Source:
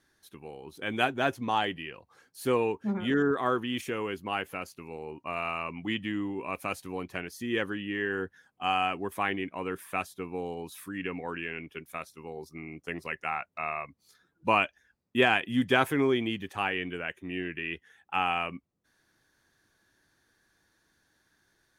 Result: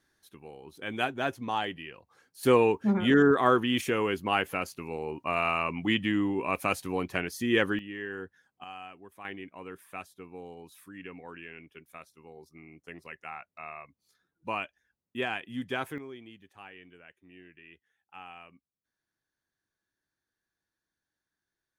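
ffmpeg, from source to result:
-af "asetnsamples=n=441:p=0,asendcmd='2.43 volume volume 5dB;7.79 volume volume -6.5dB;8.64 volume volume -16.5dB;9.25 volume volume -9dB;15.98 volume volume -18.5dB',volume=-3dB"

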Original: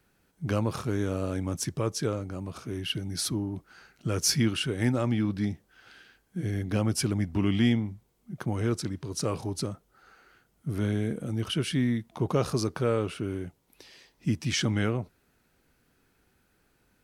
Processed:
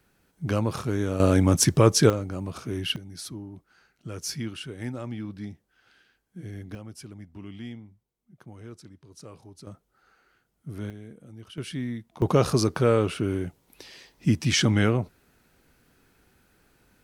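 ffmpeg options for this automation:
-af "asetnsamples=n=441:p=0,asendcmd='1.2 volume volume 11.5dB;2.1 volume volume 3.5dB;2.96 volume volume -8dB;6.75 volume volume -15.5dB;9.67 volume volume -6dB;10.9 volume volume -14.5dB;11.58 volume volume -5.5dB;12.22 volume volume 5.5dB',volume=2dB"

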